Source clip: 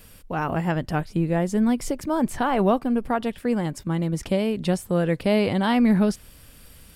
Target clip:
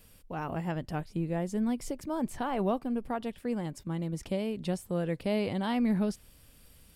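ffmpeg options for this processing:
-af "equalizer=f=1.5k:w=1.5:g=-3,volume=-9dB"

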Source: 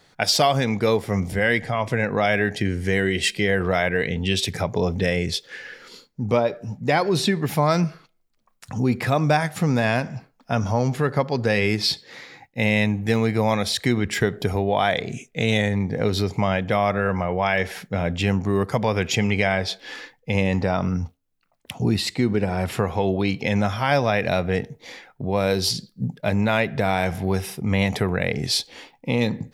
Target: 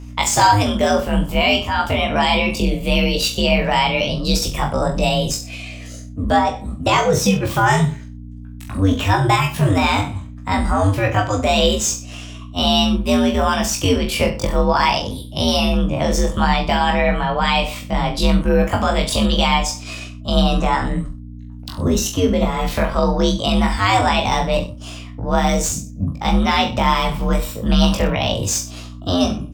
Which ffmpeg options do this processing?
-filter_complex "[0:a]highshelf=f=11k:g=-2,acrossover=split=170|6000[a][b][c];[c]aeval=exprs='(mod(28.2*val(0)+1,2)-1)/28.2':c=same[d];[a][b][d]amix=inputs=3:normalize=0,asetrate=66075,aresample=44100,atempo=0.66742,afreqshift=-99,aeval=exprs='val(0)+0.0158*(sin(2*PI*60*n/s)+sin(2*PI*2*60*n/s)/2+sin(2*PI*3*60*n/s)/3+sin(2*PI*4*60*n/s)/4+sin(2*PI*5*60*n/s)/5)':c=same,aecho=1:1:20|42|66.2|92.82|122.1:0.631|0.398|0.251|0.158|0.1,volume=2.5dB"

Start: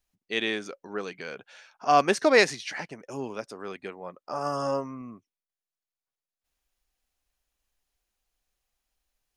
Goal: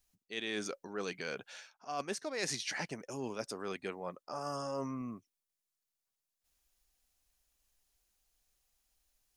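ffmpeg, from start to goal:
-af "bass=f=250:g=2,treble=f=4k:g=7,areverse,acompressor=threshold=-33dB:ratio=16,areverse,volume=-1dB"

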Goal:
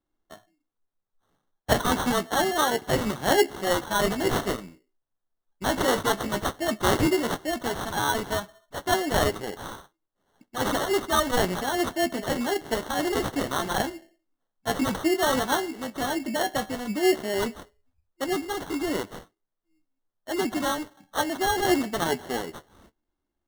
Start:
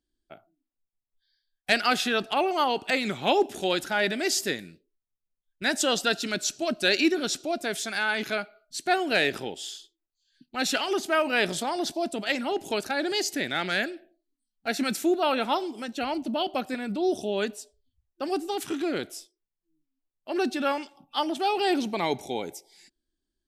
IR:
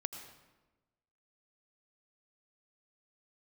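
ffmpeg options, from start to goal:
-af "flanger=delay=9.5:depth=6.3:regen=37:speed=0.1:shape=sinusoidal,acrusher=samples=18:mix=1:aa=0.000001,volume=5dB"

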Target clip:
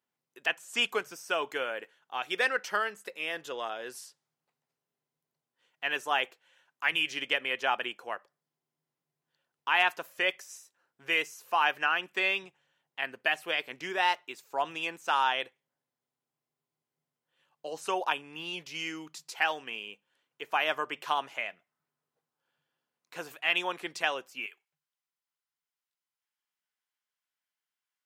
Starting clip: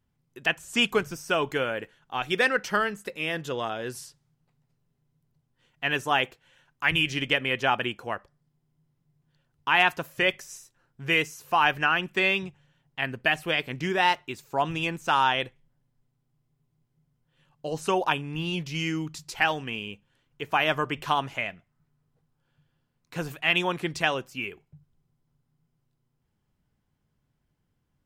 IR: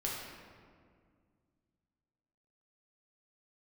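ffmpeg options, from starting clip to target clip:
-af "asetnsamples=n=441:p=0,asendcmd='24.46 highpass f 1500',highpass=450,volume=-4dB"

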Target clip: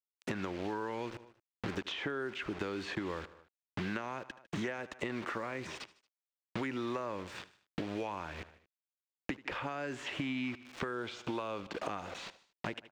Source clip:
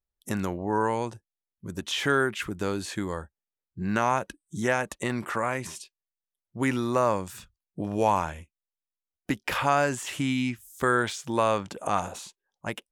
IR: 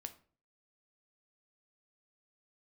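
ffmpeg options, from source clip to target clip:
-filter_complex "[0:a]acrusher=bits=6:mix=0:aa=0.000001,firequalizer=gain_entry='entry(160,0);entry(320,8);entry(2400,9);entry(11000,-19)':delay=0.05:min_phase=1,aecho=1:1:76|152|228:0.075|0.0337|0.0152,acompressor=threshold=-33dB:ratio=5,asettb=1/sr,asplit=3[a][b][c];[a]atrim=end=10.934[d];[b]atrim=start=10.93:end=11.7,asetpts=PTS-STARTPTS,afade=t=in:d=0.004:c=qsin,afade=t=out:st=0.766:d=0.004:c=qsin,equalizer=f=1.8k:t=o:w=0.27:g=-9.5[e];[c]atrim=start=11.696[f];[d][e]acrossfade=d=0.004:c1=hsin:c2=qsin[g];[g][f]acrossfade=d=0.004:c1=qsin:c2=hsin,acrossover=split=470|1200|3700[h][i][j][k];[h]acompressor=threshold=-39dB:ratio=4[l];[i]acompressor=threshold=-51dB:ratio=4[m];[j]acompressor=threshold=-45dB:ratio=4[n];[k]acompressor=threshold=-57dB:ratio=4[o];[l][m][n][o]amix=inputs=4:normalize=0,volume=3dB"

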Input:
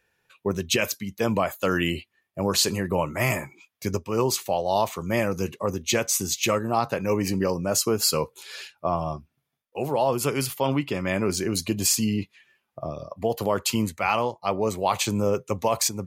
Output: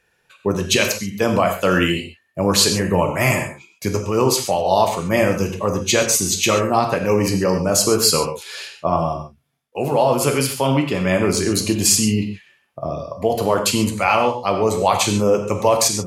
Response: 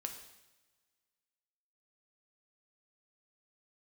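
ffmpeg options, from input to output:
-filter_complex "[1:a]atrim=start_sample=2205,atrim=end_sample=3528,asetrate=23814,aresample=44100[a];[0:a][a]afir=irnorm=-1:irlink=0,volume=5.5dB"

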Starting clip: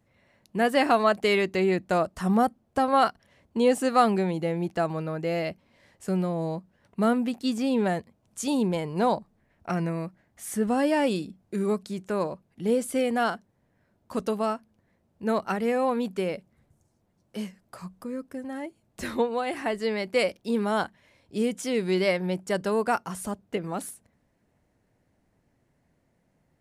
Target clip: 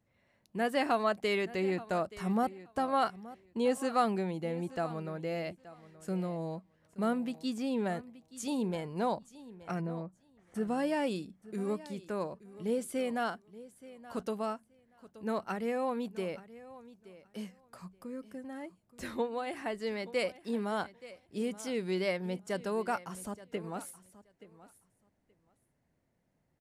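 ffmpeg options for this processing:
-filter_complex "[0:a]asplit=3[a][b][c];[a]afade=t=out:st=9.8:d=0.02[d];[b]lowpass=1.1k,afade=t=in:st=9.8:d=0.02,afade=t=out:st=10.54:d=0.02[e];[c]afade=t=in:st=10.54:d=0.02[f];[d][e][f]amix=inputs=3:normalize=0,aecho=1:1:876|1752:0.133|0.0213,volume=-8dB"

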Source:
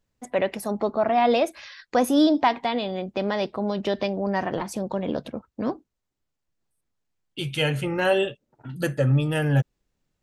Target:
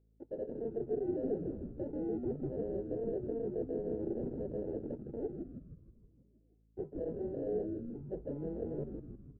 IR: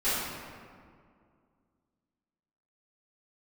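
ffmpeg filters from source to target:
-filter_complex "[0:a]highpass=270,areverse,acompressor=threshold=-34dB:ratio=10,areverse,acrusher=samples=42:mix=1:aa=0.000001,asoftclip=type=hard:threshold=-32.5dB,lowpass=f=400:t=q:w=3.8,asplit=2[a][b];[b]asplit=8[c][d][e][f][g][h][i][j];[c]adelay=173,afreqshift=-86,volume=-5dB[k];[d]adelay=346,afreqshift=-172,volume=-9.7dB[l];[e]adelay=519,afreqshift=-258,volume=-14.5dB[m];[f]adelay=692,afreqshift=-344,volume=-19.2dB[n];[g]adelay=865,afreqshift=-430,volume=-23.9dB[o];[h]adelay=1038,afreqshift=-516,volume=-28.7dB[p];[i]adelay=1211,afreqshift=-602,volume=-33.4dB[q];[j]adelay=1384,afreqshift=-688,volume=-38.1dB[r];[k][l][m][n][o][p][q][r]amix=inputs=8:normalize=0[s];[a][s]amix=inputs=2:normalize=0,aeval=exprs='val(0)+0.000708*(sin(2*PI*50*n/s)+sin(2*PI*2*50*n/s)/2+sin(2*PI*3*50*n/s)/3+sin(2*PI*4*50*n/s)/4+sin(2*PI*5*50*n/s)/5)':c=same,asetrate=48000,aresample=44100,volume=-5.5dB"

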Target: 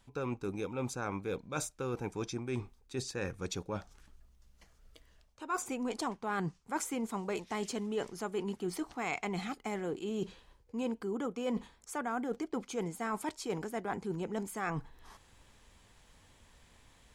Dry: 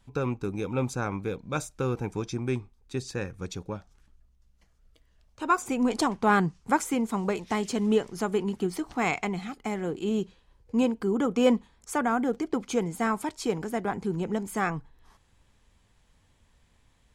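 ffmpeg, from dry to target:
-af "bass=f=250:g=-5,treble=f=4k:g=1,areverse,acompressor=threshold=-40dB:ratio=5,areverse,volume=5.5dB"

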